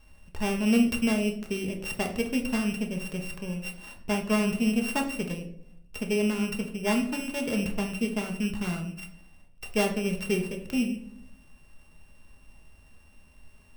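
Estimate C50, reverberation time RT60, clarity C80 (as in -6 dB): 9.0 dB, 0.65 s, 13.0 dB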